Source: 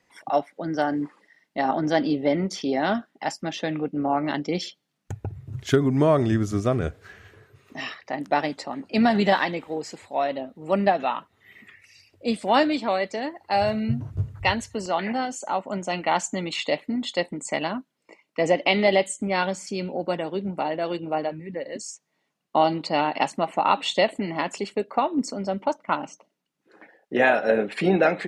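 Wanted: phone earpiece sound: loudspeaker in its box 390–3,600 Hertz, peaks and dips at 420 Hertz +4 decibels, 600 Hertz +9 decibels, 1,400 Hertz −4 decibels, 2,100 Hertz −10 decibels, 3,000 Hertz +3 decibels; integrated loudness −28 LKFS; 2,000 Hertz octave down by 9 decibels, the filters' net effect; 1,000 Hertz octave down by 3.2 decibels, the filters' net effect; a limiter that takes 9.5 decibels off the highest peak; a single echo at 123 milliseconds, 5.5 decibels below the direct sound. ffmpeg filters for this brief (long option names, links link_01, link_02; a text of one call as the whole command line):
ffmpeg -i in.wav -af "equalizer=frequency=1000:width_type=o:gain=-6,equalizer=frequency=2000:width_type=o:gain=-4.5,alimiter=limit=-17dB:level=0:latency=1,highpass=390,equalizer=frequency=420:width_type=q:width=4:gain=4,equalizer=frequency=600:width_type=q:width=4:gain=9,equalizer=frequency=1400:width_type=q:width=4:gain=-4,equalizer=frequency=2100:width_type=q:width=4:gain=-10,equalizer=frequency=3000:width_type=q:width=4:gain=3,lowpass=frequency=3600:width=0.5412,lowpass=frequency=3600:width=1.3066,aecho=1:1:123:0.531,volume=-1.5dB" out.wav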